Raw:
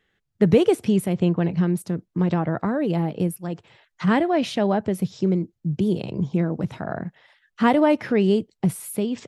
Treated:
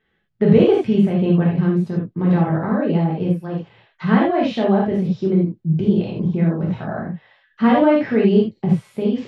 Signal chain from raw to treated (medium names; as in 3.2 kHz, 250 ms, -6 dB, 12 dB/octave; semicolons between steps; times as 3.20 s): distance through air 200 m; gated-style reverb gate 110 ms flat, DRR -4 dB; trim -1.5 dB